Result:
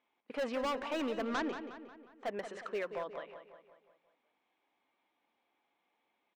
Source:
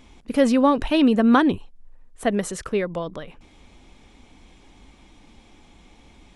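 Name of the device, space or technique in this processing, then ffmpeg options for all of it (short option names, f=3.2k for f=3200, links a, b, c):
walkie-talkie: -filter_complex "[0:a]highpass=570,lowpass=2.4k,asoftclip=type=hard:threshold=-24.5dB,agate=range=-14dB:threshold=-51dB:ratio=16:detection=peak,asettb=1/sr,asplit=3[a][b][c];[a]atrim=end=1.244[d];[b]atrim=start=1.24:end=2.26,asetpts=PTS-STARTPTS,afade=t=in:d=0.004:c=qsin,afade=t=out:st=1.016:d=0.004:c=qsin,lowpass=f=6.8k:w=0.5412,lowpass=f=6.8k:w=1.3066[e];[c]atrim=start=2.256[f];[d][e]acrossfade=d=0.004:c1=hsin:c2=qsin[g];[g][f]acrossfade=d=0.004:c1=qsin:c2=hsin,asplit=2[h][i];[i]adelay=180,lowpass=f=4.5k:p=1,volume=-9.5dB,asplit=2[j][k];[k]adelay=180,lowpass=f=4.5k:p=1,volume=0.52,asplit=2[l][m];[m]adelay=180,lowpass=f=4.5k:p=1,volume=0.52,asplit=2[n][o];[o]adelay=180,lowpass=f=4.5k:p=1,volume=0.52,asplit=2[p][q];[q]adelay=180,lowpass=f=4.5k:p=1,volume=0.52,asplit=2[r][s];[s]adelay=180,lowpass=f=4.5k:p=1,volume=0.52[t];[h][j][l][n][p][r][t]amix=inputs=7:normalize=0,volume=-7dB"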